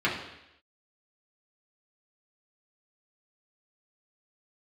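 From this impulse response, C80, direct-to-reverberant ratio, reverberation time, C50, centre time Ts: 8.5 dB, -6.5 dB, 0.85 s, 5.5 dB, 38 ms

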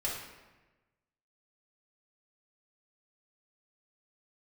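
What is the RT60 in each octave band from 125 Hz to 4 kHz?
1.5, 1.3, 1.2, 1.1, 1.1, 0.85 s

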